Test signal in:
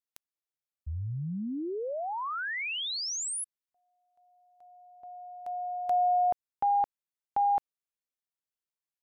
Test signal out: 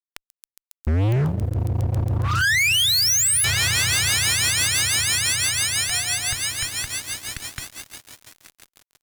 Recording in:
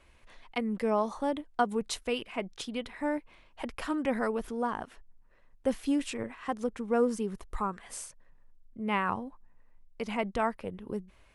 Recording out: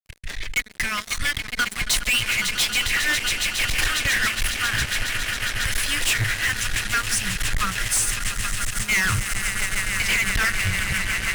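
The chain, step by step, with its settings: elliptic band-stop 120–1700 Hz, stop band 40 dB; on a send: echo with a slow build-up 137 ms, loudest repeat 8, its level -16 dB; on the sum: rotary cabinet horn 6 Hz; fuzz box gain 50 dB, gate -57 dBFS; trim -4.5 dB

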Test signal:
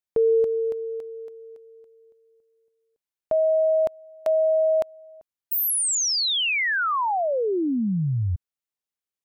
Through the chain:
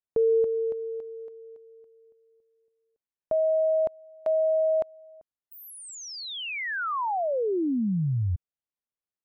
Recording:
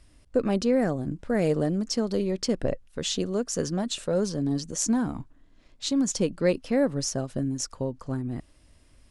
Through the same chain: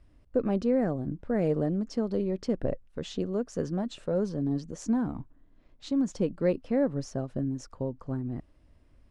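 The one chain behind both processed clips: low-pass 1.1 kHz 6 dB/octave; trim -2 dB

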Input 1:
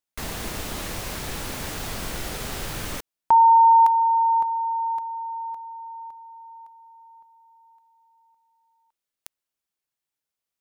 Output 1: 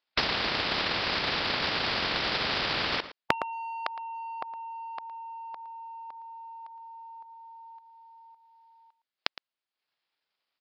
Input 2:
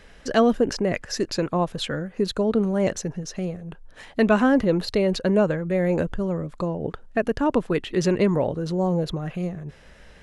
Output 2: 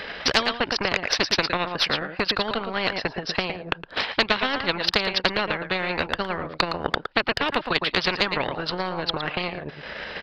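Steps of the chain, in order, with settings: high-pass 580 Hz 6 dB/octave; resampled via 11.025 kHz; transient shaper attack +12 dB, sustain -9 dB; on a send: delay 113 ms -16.5 dB; on the sum: spectrum-flattening compressor 4:1; trim -3.5 dB

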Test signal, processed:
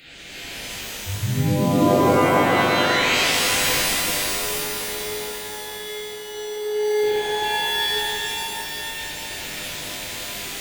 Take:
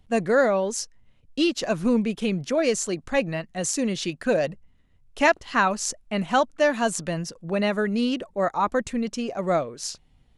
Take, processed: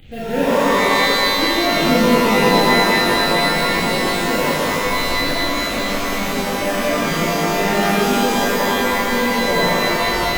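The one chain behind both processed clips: one-bit delta coder 32 kbps, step -33.5 dBFS; in parallel at -9 dB: integer overflow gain 24.5 dB; on the sum: static phaser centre 2.5 kHz, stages 4; on a send: echo with a slow build-up 91 ms, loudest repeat 5, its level -15 dB; on the sum: random-step tremolo; pitch-shifted reverb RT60 3 s, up +12 st, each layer -2 dB, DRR -10.5 dB; trim -2.5 dB

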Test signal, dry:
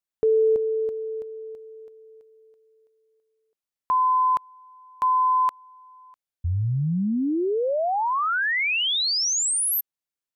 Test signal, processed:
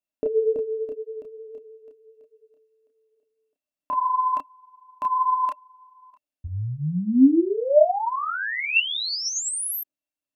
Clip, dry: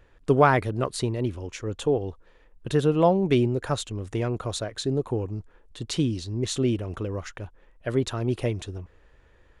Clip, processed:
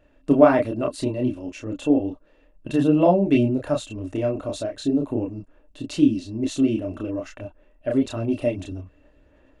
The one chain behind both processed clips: chorus voices 4, 1.2 Hz, delay 30 ms, depth 3.5 ms; small resonant body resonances 280/600/2700 Hz, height 17 dB, ringing for 60 ms; trim -1.5 dB

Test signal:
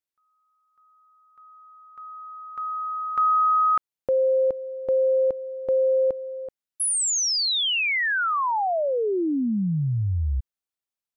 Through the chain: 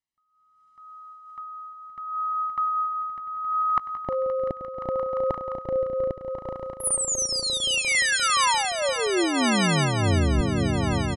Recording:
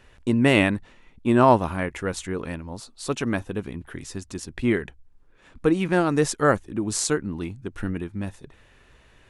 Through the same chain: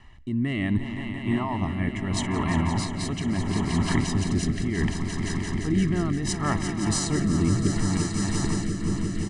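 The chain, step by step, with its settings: treble shelf 6.6 kHz -11.5 dB; comb 1 ms, depth 99%; level rider gain up to 12 dB; peak limiter -12 dBFS; reverse; compression, threshold -24 dBFS; reverse; echo with a slow build-up 174 ms, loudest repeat 5, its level -10 dB; rotary cabinet horn 0.7 Hz; resampled via 22.05 kHz; random flutter of the level, depth 55%; trim +5.5 dB

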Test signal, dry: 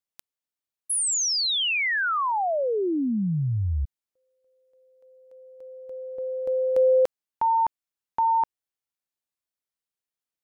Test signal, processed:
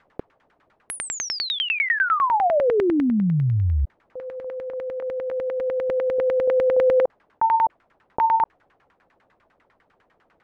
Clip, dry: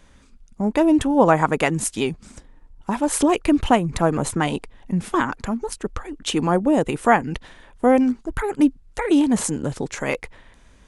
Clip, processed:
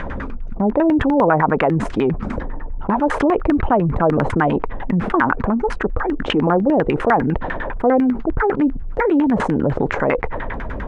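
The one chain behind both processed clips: LFO low-pass saw down 10 Hz 400–2000 Hz; level flattener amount 70%; trim -4.5 dB

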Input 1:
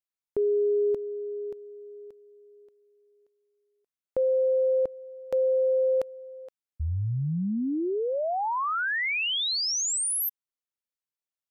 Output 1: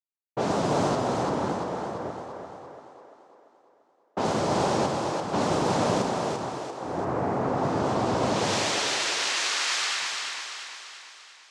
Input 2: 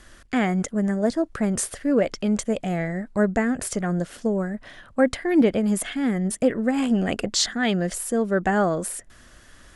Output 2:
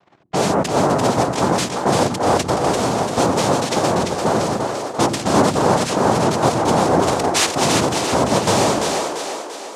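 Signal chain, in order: waveshaping leveller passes 3; noise-vocoded speech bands 2; level-controlled noise filter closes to 1.6 kHz, open at -14 dBFS; on a send: two-band feedback delay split 320 Hz, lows 103 ms, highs 342 ms, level -4 dB; on the sum: trim -4 dB

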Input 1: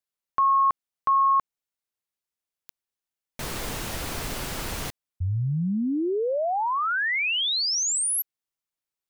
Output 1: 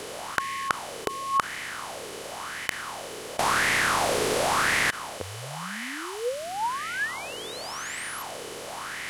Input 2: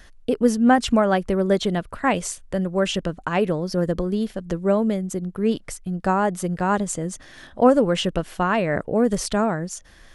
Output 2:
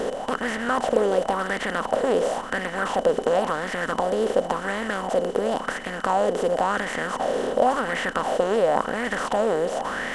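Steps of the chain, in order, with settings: spectral levelling over time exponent 0.2; whistle 3 kHz -34 dBFS; sweeping bell 0.94 Hz 420–2000 Hz +16 dB; trim -18 dB

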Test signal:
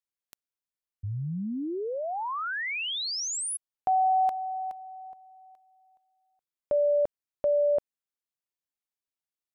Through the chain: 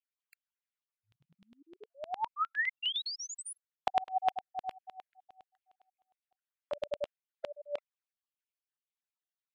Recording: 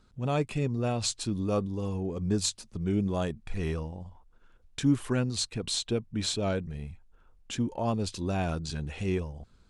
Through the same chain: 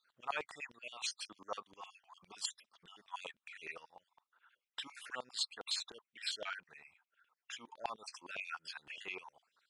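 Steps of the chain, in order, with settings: random holes in the spectrogram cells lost 45%; tone controls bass +1 dB, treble -7 dB; LFO high-pass saw down 9.8 Hz 830–3200 Hz; trim -3 dB

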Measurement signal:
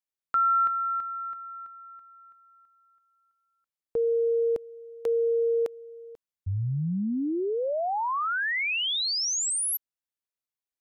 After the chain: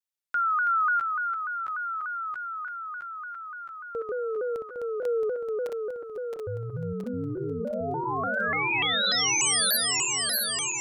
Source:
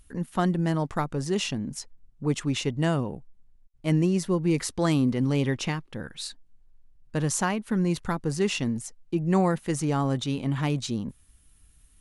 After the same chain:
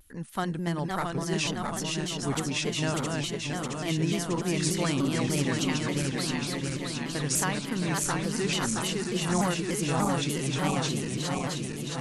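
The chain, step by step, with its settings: backward echo that repeats 335 ms, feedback 84%, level -3 dB; tilt shelf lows -4 dB, about 1.2 kHz; vibrato with a chosen wave saw down 3.4 Hz, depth 160 cents; trim -3 dB

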